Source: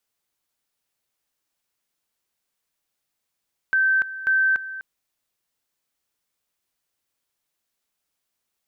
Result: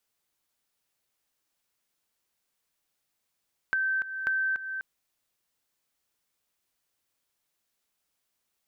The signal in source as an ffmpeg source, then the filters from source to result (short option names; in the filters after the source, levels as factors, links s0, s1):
-f lavfi -i "aevalsrc='pow(10,(-16-14.5*gte(mod(t,0.54),0.29))/20)*sin(2*PI*1550*t)':d=1.08:s=44100"
-af "acompressor=threshold=0.0447:ratio=6"